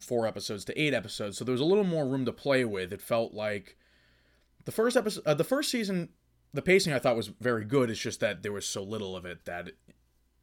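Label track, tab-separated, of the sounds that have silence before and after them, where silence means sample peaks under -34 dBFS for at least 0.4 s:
4.680000	6.050000	sound
6.550000	9.690000	sound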